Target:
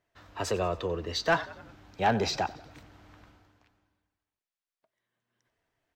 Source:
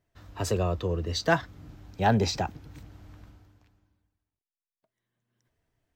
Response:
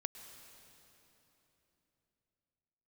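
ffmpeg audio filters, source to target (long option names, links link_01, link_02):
-filter_complex "[0:a]asplit=5[link_01][link_02][link_03][link_04][link_05];[link_02]adelay=92,afreqshift=-37,volume=-20dB[link_06];[link_03]adelay=184,afreqshift=-74,volume=-25.4dB[link_07];[link_04]adelay=276,afreqshift=-111,volume=-30.7dB[link_08];[link_05]adelay=368,afreqshift=-148,volume=-36.1dB[link_09];[link_01][link_06][link_07][link_08][link_09]amix=inputs=5:normalize=0,asplit=2[link_10][link_11];[link_11]highpass=frequency=720:poles=1,volume=14dB,asoftclip=type=tanh:threshold=-9.5dB[link_12];[link_10][link_12]amix=inputs=2:normalize=0,lowpass=frequency=3300:poles=1,volume=-6dB,volume=-4.5dB"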